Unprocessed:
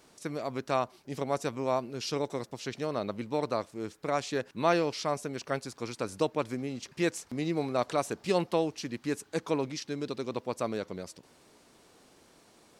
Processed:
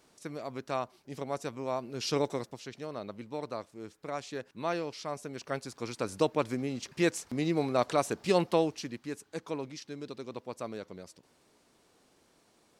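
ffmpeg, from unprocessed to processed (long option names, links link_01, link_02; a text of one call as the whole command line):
ffmpeg -i in.wav -af "volume=11.5dB,afade=type=in:start_time=1.78:duration=0.4:silence=0.421697,afade=type=out:start_time=2.18:duration=0.48:silence=0.316228,afade=type=in:start_time=5.04:duration=1.25:silence=0.375837,afade=type=out:start_time=8.61:duration=0.45:silence=0.398107" out.wav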